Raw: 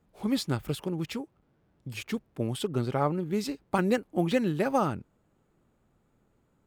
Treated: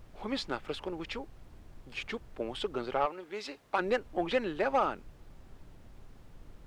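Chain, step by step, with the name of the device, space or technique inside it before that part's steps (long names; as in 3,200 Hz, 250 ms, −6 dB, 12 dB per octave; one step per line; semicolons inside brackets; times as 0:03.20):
aircraft cabin announcement (band-pass filter 470–3,700 Hz; soft clipping −20 dBFS, distortion −16 dB; brown noise bed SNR 14 dB)
0:03.05–0:03.77: high-pass filter 930 Hz → 360 Hz 6 dB per octave
level +2 dB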